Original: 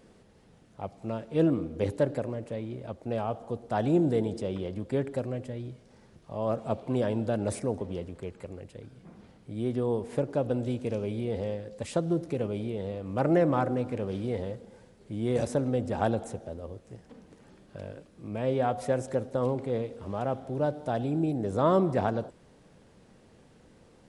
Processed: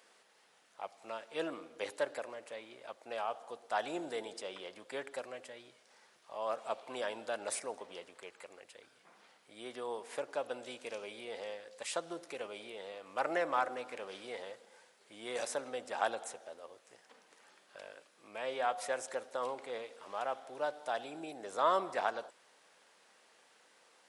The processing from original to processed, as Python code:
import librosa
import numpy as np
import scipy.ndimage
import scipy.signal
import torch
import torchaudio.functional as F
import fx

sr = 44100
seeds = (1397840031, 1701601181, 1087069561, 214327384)

y = scipy.signal.sosfilt(scipy.signal.butter(2, 1000.0, 'highpass', fs=sr, output='sos'), x)
y = F.gain(torch.from_numpy(y), 2.0).numpy()